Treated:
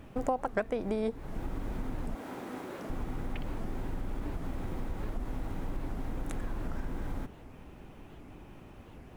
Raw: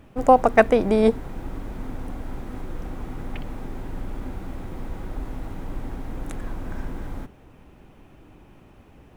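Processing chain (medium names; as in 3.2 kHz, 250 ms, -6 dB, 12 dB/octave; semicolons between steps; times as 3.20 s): 2.15–2.90 s: high-pass 270 Hz 12 dB/octave; compression 4:1, threshold -31 dBFS, peak gain reduction 18.5 dB; warped record 78 rpm, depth 250 cents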